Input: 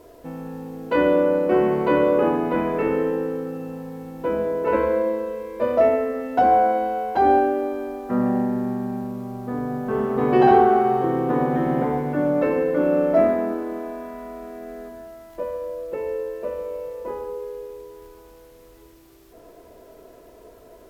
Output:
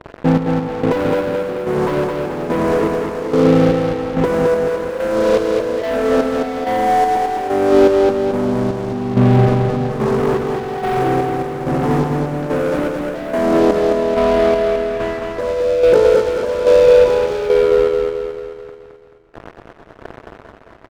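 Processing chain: LPF 1200 Hz; bell 110 Hz +7.5 dB 0.81 oct; sample leveller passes 5; negative-ratio compressor -12 dBFS, ratio -0.5; chopper 1.2 Hz, depth 65%, duty 45%; feedback echo 0.217 s, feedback 52%, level -4 dB; gain -1 dB

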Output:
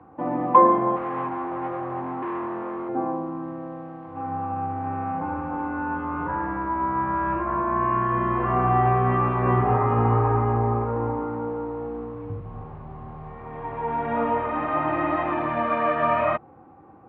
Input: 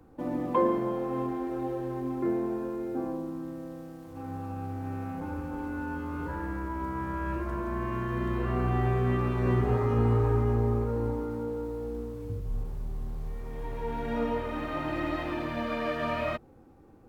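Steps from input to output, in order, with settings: 0.96–2.89 hard clip -34.5 dBFS, distortion -16 dB; speaker cabinet 110–2500 Hz, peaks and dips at 240 Hz -4 dB, 430 Hz -4 dB, 760 Hz +8 dB, 1100 Hz +9 dB; gain +6 dB

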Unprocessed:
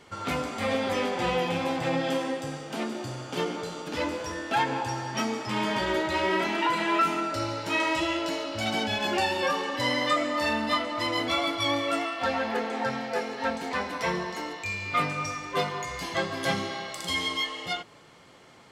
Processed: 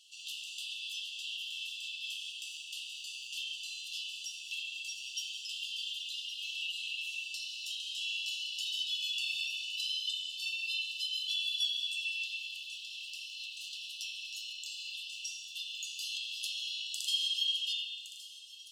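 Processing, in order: rattling part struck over -42 dBFS, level -32 dBFS; compressor, threshold -28 dBFS, peak gain reduction 8.5 dB; brick-wall FIR high-pass 2600 Hz; on a send: thin delay 1.115 s, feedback 68%, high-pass 5300 Hz, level -11.5 dB; on the sum: spring tank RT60 1.5 s, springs 30/43 ms, chirp 25 ms, DRR -3 dB

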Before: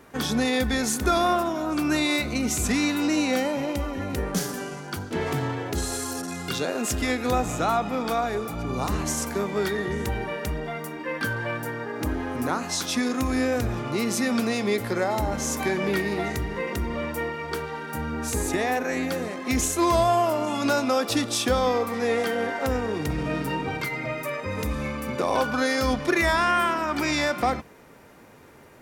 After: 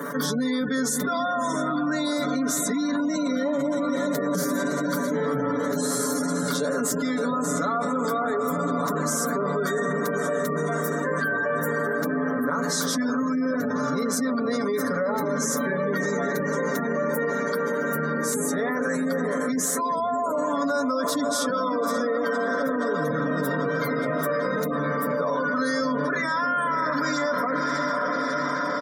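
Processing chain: high shelf 10000 Hz +9 dB; diffused feedback echo 0.604 s, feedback 77%, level -9 dB; limiter -17.5 dBFS, peak gain reduction 9 dB; spectral gate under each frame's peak -25 dB strong; HPF 150 Hz 24 dB/oct; bell 14000 Hz -5.5 dB 1.7 oct; fixed phaser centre 520 Hz, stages 8; comb 7 ms, depth 75%; fast leveller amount 70%

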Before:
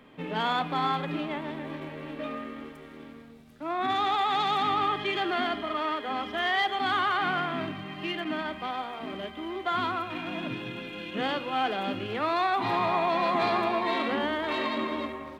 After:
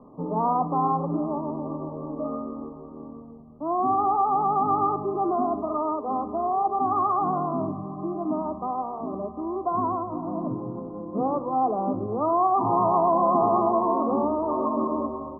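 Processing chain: Chebyshev low-pass 1200 Hz, order 8; gain +6 dB

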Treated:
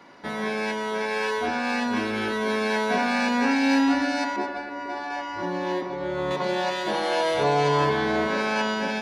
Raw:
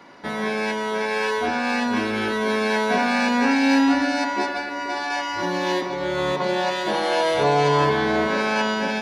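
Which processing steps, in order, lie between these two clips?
4.36–6.31 high shelf 2200 Hz -11 dB; gain -3 dB

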